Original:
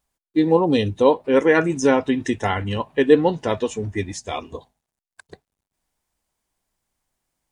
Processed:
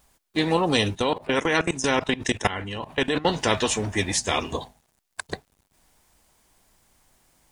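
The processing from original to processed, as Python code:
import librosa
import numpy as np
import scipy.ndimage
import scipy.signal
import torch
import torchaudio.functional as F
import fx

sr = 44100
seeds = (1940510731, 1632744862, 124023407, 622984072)

y = fx.level_steps(x, sr, step_db=20, at=(0.95, 3.25))
y = fx.spectral_comp(y, sr, ratio=2.0)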